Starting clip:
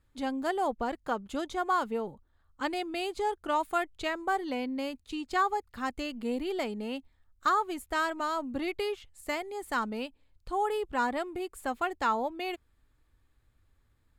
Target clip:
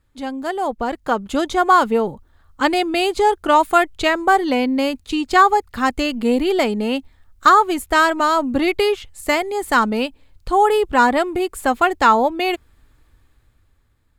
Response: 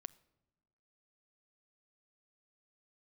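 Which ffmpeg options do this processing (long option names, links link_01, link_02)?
-af "dynaudnorm=framelen=190:gausssize=11:maxgain=9.5dB,volume=5.5dB"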